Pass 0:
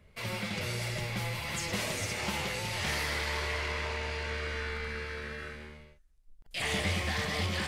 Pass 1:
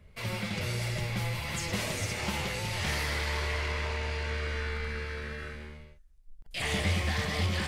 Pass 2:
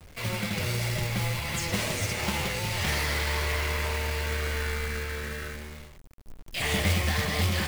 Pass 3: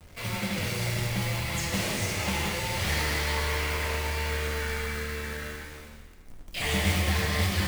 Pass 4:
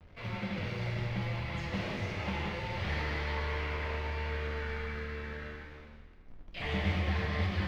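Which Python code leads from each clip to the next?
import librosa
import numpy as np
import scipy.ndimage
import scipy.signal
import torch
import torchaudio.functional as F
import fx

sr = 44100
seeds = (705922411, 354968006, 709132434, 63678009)

y1 = fx.low_shelf(x, sr, hz=140.0, db=6.5)
y2 = fx.quant_companded(y1, sr, bits=4)
y2 = F.gain(torch.from_numpy(y2), 3.0).numpy()
y3 = fx.rev_plate(y2, sr, seeds[0], rt60_s=1.5, hf_ratio=0.95, predelay_ms=0, drr_db=1.0)
y3 = F.gain(torch.from_numpy(y3), -2.5).numpy()
y4 = fx.air_absorb(y3, sr, metres=270.0)
y4 = F.gain(torch.from_numpy(y4), -4.5).numpy()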